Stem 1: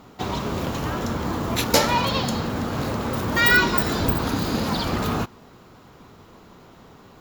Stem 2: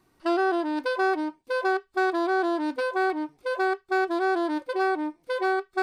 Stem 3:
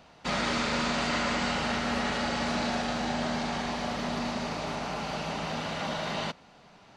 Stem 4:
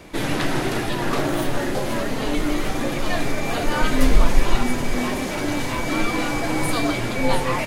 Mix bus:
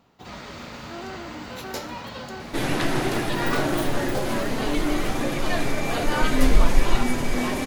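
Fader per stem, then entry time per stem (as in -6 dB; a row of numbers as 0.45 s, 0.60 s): -16.0 dB, -15.0 dB, -11.0 dB, -1.5 dB; 0.00 s, 0.65 s, 0.00 s, 2.40 s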